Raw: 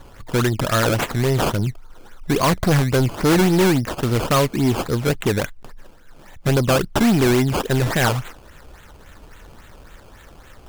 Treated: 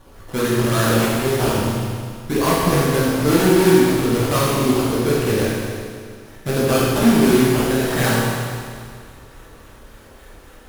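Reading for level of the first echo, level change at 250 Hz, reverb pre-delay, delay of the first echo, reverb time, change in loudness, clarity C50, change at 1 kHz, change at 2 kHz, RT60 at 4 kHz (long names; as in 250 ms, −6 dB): no echo audible, +2.5 dB, 14 ms, no echo audible, 2.1 s, +1.5 dB, −2.5 dB, +1.0 dB, +1.0 dB, 2.1 s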